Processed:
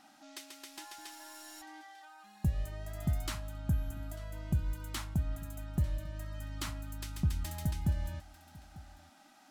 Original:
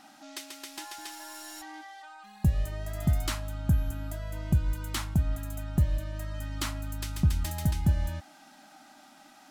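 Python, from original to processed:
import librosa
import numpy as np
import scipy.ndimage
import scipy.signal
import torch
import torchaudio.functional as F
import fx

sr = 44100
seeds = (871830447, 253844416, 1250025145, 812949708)

y = x + 10.0 ** (-20.0 / 20.0) * np.pad(x, (int(895 * sr / 1000.0), 0))[:len(x)]
y = F.gain(torch.from_numpy(y), -6.5).numpy()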